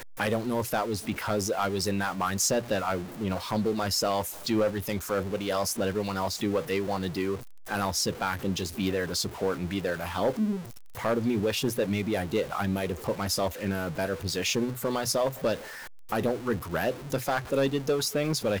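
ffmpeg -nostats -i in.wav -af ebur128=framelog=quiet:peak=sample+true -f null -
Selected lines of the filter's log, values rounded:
Integrated loudness:
  I:         -28.9 LUFS
  Threshold: -39.0 LUFS
Loudness range:
  LRA:         1.6 LU
  Threshold: -49.1 LUFS
  LRA low:   -29.8 LUFS
  LRA high:  -28.1 LUFS
Sample peak:
  Peak:      -18.6 dBFS
True peak:
  Peak:      -16.7 dBFS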